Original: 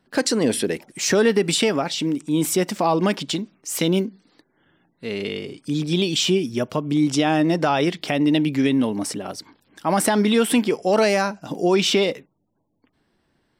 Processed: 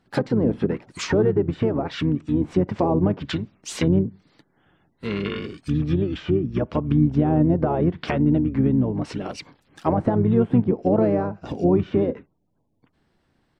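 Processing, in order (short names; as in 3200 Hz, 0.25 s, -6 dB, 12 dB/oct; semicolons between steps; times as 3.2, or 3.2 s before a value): median filter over 3 samples; treble ducked by the level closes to 740 Hz, closed at -16.5 dBFS; harmoniser -12 st -3 dB, -4 st -7 dB; gain -2 dB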